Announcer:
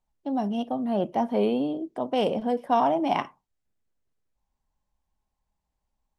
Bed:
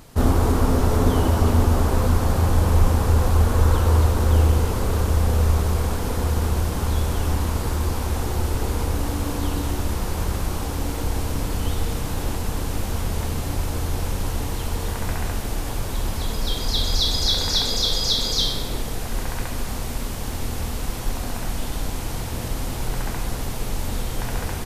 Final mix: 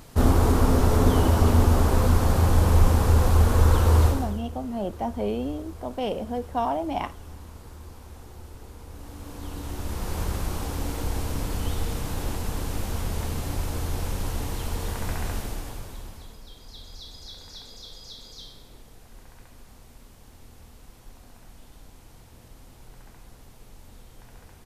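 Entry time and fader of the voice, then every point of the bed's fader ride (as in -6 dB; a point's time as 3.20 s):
3.85 s, -4.0 dB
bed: 4.07 s -1 dB
4.43 s -20 dB
8.82 s -20 dB
10.15 s -4 dB
15.38 s -4 dB
16.47 s -22 dB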